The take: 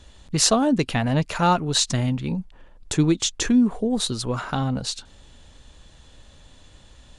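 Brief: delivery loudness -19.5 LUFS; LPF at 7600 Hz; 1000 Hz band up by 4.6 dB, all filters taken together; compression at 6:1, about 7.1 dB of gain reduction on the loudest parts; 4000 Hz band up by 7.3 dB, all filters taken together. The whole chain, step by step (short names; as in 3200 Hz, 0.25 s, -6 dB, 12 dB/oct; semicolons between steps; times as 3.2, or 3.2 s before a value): LPF 7600 Hz; bell 1000 Hz +5.5 dB; bell 4000 Hz +8.5 dB; compressor 6:1, threshold -18 dBFS; gain +4 dB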